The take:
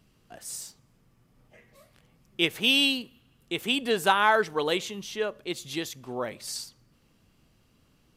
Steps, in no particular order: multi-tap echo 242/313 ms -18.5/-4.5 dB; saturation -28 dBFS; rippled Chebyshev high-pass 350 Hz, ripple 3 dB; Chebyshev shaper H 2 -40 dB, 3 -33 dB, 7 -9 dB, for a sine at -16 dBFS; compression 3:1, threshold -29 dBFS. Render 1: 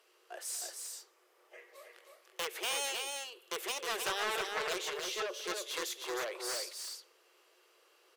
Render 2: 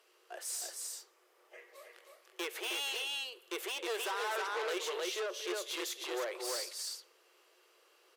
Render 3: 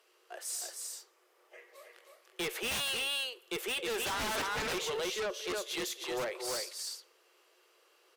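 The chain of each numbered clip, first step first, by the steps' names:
compression > Chebyshev shaper > rippled Chebyshev high-pass > saturation > multi-tap echo; compression > multi-tap echo > saturation > Chebyshev shaper > rippled Chebyshev high-pass; rippled Chebyshev high-pass > saturation > multi-tap echo > Chebyshev shaper > compression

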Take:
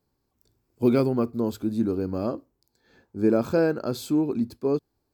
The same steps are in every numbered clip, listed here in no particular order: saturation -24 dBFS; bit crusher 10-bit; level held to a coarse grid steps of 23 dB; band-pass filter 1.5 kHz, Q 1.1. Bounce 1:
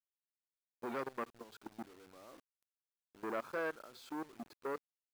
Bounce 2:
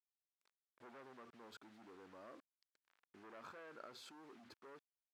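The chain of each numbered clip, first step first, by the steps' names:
level held to a coarse grid > saturation > band-pass filter > bit crusher; saturation > level held to a coarse grid > bit crusher > band-pass filter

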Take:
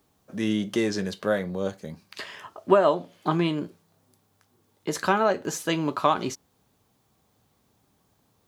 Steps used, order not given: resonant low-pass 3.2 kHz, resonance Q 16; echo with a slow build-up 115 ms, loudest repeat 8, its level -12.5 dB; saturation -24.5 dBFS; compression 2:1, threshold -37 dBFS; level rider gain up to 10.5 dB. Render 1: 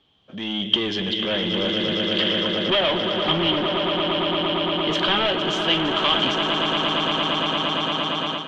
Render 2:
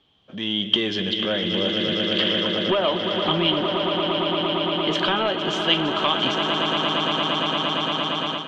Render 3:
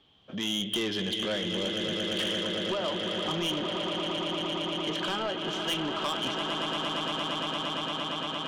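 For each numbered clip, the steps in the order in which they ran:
echo with a slow build-up > saturation > compression > resonant low-pass > level rider; echo with a slow build-up > compression > saturation > resonant low-pass > level rider; level rider > echo with a slow build-up > compression > resonant low-pass > saturation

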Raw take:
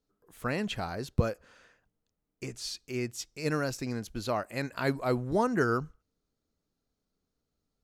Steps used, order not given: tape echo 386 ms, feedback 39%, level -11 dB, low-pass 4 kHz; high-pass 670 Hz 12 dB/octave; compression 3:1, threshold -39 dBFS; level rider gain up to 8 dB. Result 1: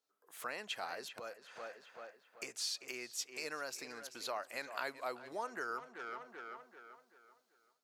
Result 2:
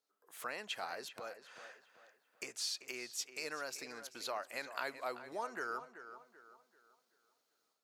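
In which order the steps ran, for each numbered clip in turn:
tape echo > level rider > compression > high-pass; level rider > compression > high-pass > tape echo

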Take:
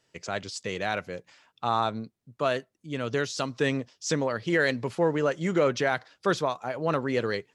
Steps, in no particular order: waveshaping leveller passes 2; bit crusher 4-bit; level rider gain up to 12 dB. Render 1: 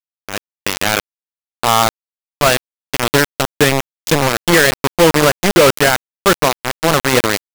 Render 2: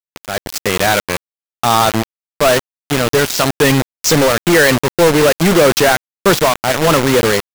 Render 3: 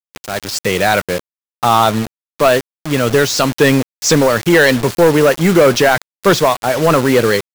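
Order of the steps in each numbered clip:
bit crusher > waveshaping leveller > level rider; waveshaping leveller > bit crusher > level rider; waveshaping leveller > level rider > bit crusher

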